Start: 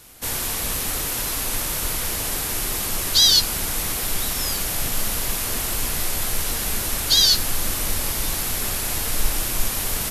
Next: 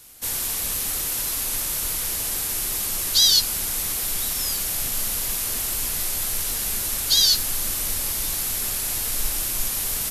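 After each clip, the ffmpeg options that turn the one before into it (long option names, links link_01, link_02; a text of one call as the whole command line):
ffmpeg -i in.wav -af "highshelf=frequency=3400:gain=8.5,volume=-7dB" out.wav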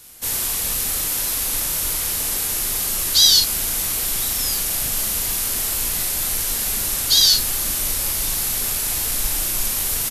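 ffmpeg -i in.wav -filter_complex "[0:a]asplit=2[link_01][link_02];[link_02]adelay=38,volume=-6dB[link_03];[link_01][link_03]amix=inputs=2:normalize=0,volume=2.5dB" out.wav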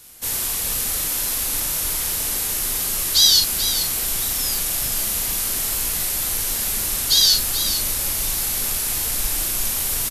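ffmpeg -i in.wav -af "aecho=1:1:434:0.316,volume=-1dB" out.wav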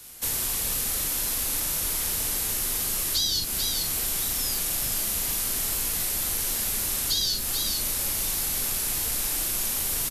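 ffmpeg -i in.wav -filter_complex "[0:a]acrossover=split=150|440[link_01][link_02][link_03];[link_01]acompressor=threshold=-35dB:ratio=4[link_04];[link_02]acompressor=threshold=-44dB:ratio=4[link_05];[link_03]acompressor=threshold=-25dB:ratio=4[link_06];[link_04][link_05][link_06]amix=inputs=3:normalize=0" out.wav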